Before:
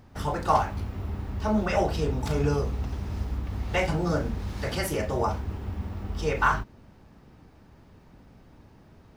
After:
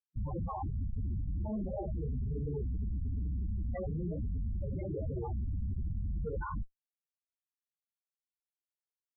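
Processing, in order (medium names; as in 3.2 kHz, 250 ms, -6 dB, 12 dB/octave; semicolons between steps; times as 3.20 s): Schmitt trigger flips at -31 dBFS; loudest bins only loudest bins 8; trim -4 dB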